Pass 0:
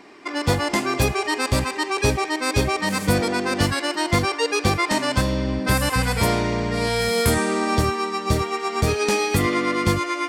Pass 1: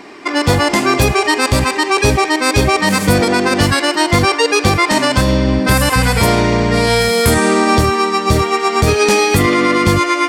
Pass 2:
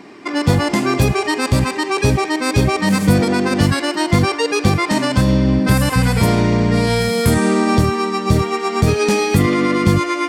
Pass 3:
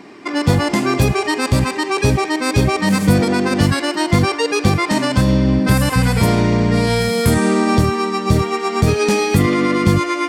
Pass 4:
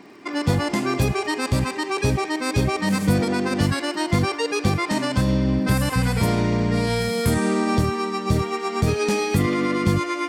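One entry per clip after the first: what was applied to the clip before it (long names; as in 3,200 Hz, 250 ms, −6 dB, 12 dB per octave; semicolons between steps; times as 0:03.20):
boost into a limiter +12.5 dB; level −2 dB
parametric band 160 Hz +9.5 dB 1.8 octaves; level −6.5 dB
no processing that can be heard
surface crackle 61 per second −38 dBFS; level −6 dB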